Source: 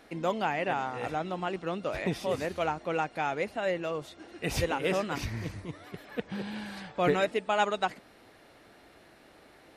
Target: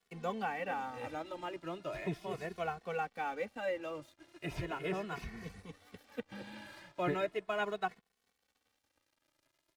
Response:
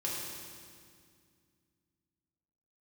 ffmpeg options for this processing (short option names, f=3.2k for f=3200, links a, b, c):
-filter_complex "[0:a]highshelf=f=2.7k:g=5.5,acrossover=split=390|1200|2600[a][b][c][d];[d]acompressor=threshold=-51dB:ratio=6[e];[a][b][c][e]amix=inputs=4:normalize=0,aeval=exprs='sgn(val(0))*max(abs(val(0))-0.00299,0)':c=same,asplit=2[f][g];[g]adelay=2.3,afreqshift=0.38[h];[f][h]amix=inputs=2:normalize=1,volume=-4.5dB"